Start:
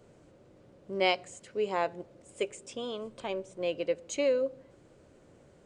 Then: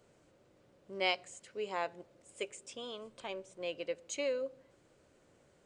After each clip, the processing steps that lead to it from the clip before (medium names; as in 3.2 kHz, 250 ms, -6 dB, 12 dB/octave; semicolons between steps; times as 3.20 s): tilt shelf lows -4 dB, about 740 Hz; trim -6.5 dB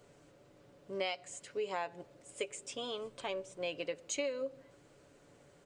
comb 7 ms, depth 37%; compression 6:1, threshold -37 dBFS, peak gain reduction 11.5 dB; trim +4 dB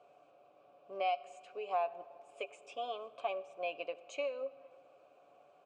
vowel filter a; on a send at -18.5 dB: reverberation RT60 2.6 s, pre-delay 40 ms; on the sum: trim +10.5 dB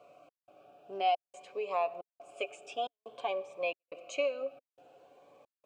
trance gate "xxx..xxxx" 157 bpm -60 dB; Shepard-style phaser rising 0.52 Hz; trim +7 dB